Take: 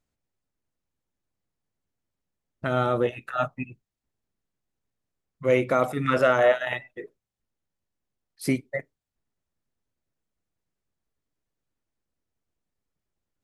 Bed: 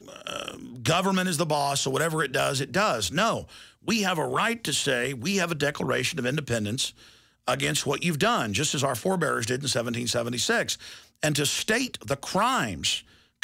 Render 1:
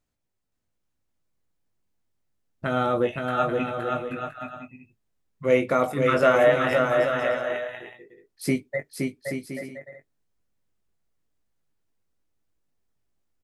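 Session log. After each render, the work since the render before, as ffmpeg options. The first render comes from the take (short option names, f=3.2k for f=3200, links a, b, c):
-filter_complex "[0:a]asplit=2[a][b];[b]adelay=20,volume=-8dB[c];[a][c]amix=inputs=2:normalize=0,asplit=2[d][e];[e]aecho=0:1:520|832|1019|1132|1199:0.631|0.398|0.251|0.158|0.1[f];[d][f]amix=inputs=2:normalize=0"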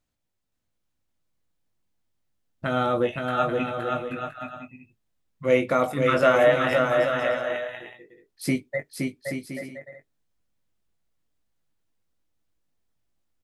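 -af "equalizer=f=3.5k:t=o:w=0.77:g=2.5,bandreject=f=410:w=12"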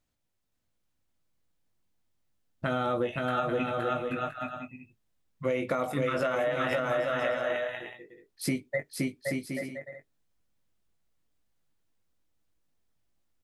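-af "alimiter=limit=-13dB:level=0:latency=1:release=66,acompressor=threshold=-25dB:ratio=6"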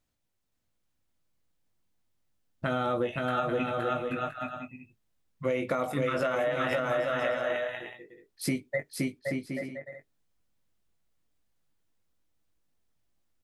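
-filter_complex "[0:a]asettb=1/sr,asplit=3[a][b][c];[a]atrim=end=9.194[d];[b]atrim=start=9.19:end=9.86,asetpts=PTS-STARTPTS,afade=t=in:d=0.004:c=qsin,afade=t=out:st=0.666:d=0.004:c=qsin,highshelf=f=5.1k:g=-10.5[e];[c]atrim=start=9.856[f];[d][e]acrossfade=d=0.004:c1=hsin:c2=qsin[g];[g][f]acrossfade=d=0.004:c1=qsin:c2=hsin"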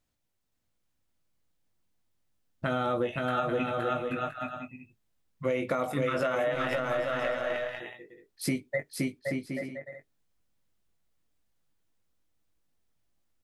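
-filter_complex "[0:a]asettb=1/sr,asplit=3[a][b][c];[a]atrim=end=6.544[d];[b]atrim=start=6.54:end=7.8,asetpts=PTS-STARTPTS,afade=t=in:d=0.004:c=qsin,afade=t=out:st=1.256:d=0.004:c=qsin,aeval=exprs='if(lt(val(0),0),0.708*val(0),val(0))':c=same[e];[c]atrim=start=7.796[f];[d][e]acrossfade=d=0.004:c1=hsin:c2=qsin[g];[g][f]acrossfade=d=0.004:c1=qsin:c2=hsin"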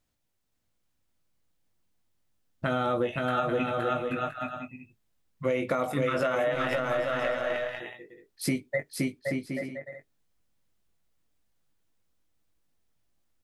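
-af "volume=1.5dB"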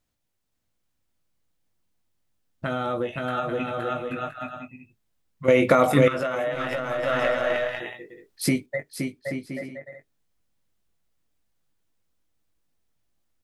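-filter_complex "[0:a]asplit=5[a][b][c][d][e];[a]atrim=end=5.482[f];[b]atrim=start=5.478:end=6.082,asetpts=PTS-STARTPTS,volume=10.5dB[g];[c]atrim=start=6.078:end=7.032[h];[d]atrim=start=7.028:end=8.662,asetpts=PTS-STARTPTS,volume=5.5dB[i];[e]atrim=start=8.658[j];[f][g]acrossfade=d=0.004:c1=hsin:c2=hsin[k];[k][h]acrossfade=d=0.004:c1=hsin:c2=hsin[l];[l][i]acrossfade=d=0.004:c1=hsin:c2=hsin[m];[m][j]acrossfade=d=0.004:c1=hsin:c2=hsin"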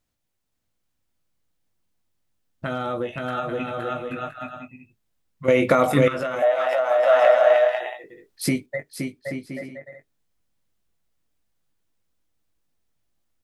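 -filter_complex "[0:a]asettb=1/sr,asplit=3[a][b][c];[a]atrim=end=2.754[d];[b]atrim=start=2.75:end=3.36,asetpts=PTS-STARTPTS,afade=t=in:d=0.004:c=qsin,afade=t=out:st=0.606:d=0.004:c=qsin,asoftclip=type=hard:threshold=-17dB[e];[c]atrim=start=3.356[f];[d][e]acrossfade=d=0.004:c1=hsin:c2=qsin[g];[g][f]acrossfade=d=0.004:c1=qsin:c2=hsin,asettb=1/sr,asplit=3[h][i][j];[h]atrim=end=6.424[k];[i]atrim=start=6.42:end=8.04,asetpts=PTS-STARTPTS,afade=t=in:d=0.004:c=qsin,afade=t=out:st=1.616:d=0.004:c=qsin,highpass=f=680:t=q:w=5.2[l];[j]atrim=start=8.036[m];[k][l]acrossfade=d=0.004:c1=hsin:c2=qsin[n];[n][m]acrossfade=d=0.004:c1=qsin:c2=hsin"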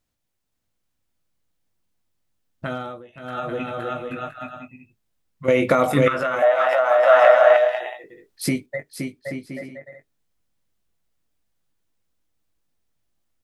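-filter_complex "[0:a]asettb=1/sr,asplit=3[a][b][c];[a]atrim=end=6.064[d];[b]atrim=start=6.06:end=7.57,asetpts=PTS-STARTPTS,afade=t=in:d=0.004:c=qsin,afade=t=out:st=1.506:d=0.004:c=qsin,equalizer=f=1.3k:t=o:w=1.6:g=7[e];[c]atrim=start=7.566[f];[d][e]acrossfade=d=0.004:c1=hsin:c2=qsin[g];[g][f]acrossfade=d=0.004:c1=qsin:c2=hsin,asplit=3[h][i][j];[h]atrim=end=3.02,asetpts=PTS-STARTPTS,afade=t=out:st=2.71:d=0.31:silence=0.149624[k];[i]atrim=start=3.02:end=3.13,asetpts=PTS-STARTPTS,volume=-16.5dB[l];[j]atrim=start=3.13,asetpts=PTS-STARTPTS,afade=t=in:d=0.31:silence=0.149624[m];[k][l][m]concat=n=3:v=0:a=1"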